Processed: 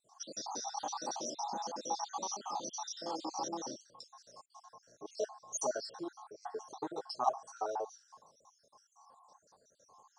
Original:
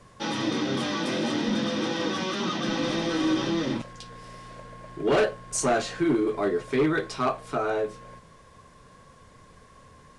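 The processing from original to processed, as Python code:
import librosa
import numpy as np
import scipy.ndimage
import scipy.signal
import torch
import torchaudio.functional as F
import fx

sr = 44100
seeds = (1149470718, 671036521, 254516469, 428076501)

y = fx.spec_dropout(x, sr, seeds[0], share_pct=61)
y = fx.double_bandpass(y, sr, hz=2200.0, octaves=2.8)
y = fx.wow_flutter(y, sr, seeds[1], rate_hz=2.1, depth_cents=21.0)
y = y * librosa.db_to_amplitude(7.0)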